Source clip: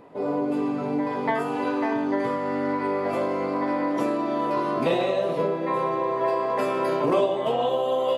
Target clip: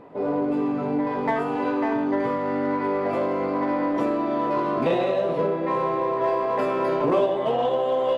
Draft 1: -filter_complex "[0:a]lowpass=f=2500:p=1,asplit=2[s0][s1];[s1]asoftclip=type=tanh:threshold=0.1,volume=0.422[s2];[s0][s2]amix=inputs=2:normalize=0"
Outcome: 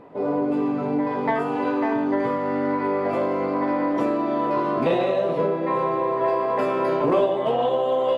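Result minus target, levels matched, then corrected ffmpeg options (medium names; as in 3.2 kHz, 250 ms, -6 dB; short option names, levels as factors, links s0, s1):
saturation: distortion -8 dB
-filter_complex "[0:a]lowpass=f=2500:p=1,asplit=2[s0][s1];[s1]asoftclip=type=tanh:threshold=0.0335,volume=0.422[s2];[s0][s2]amix=inputs=2:normalize=0"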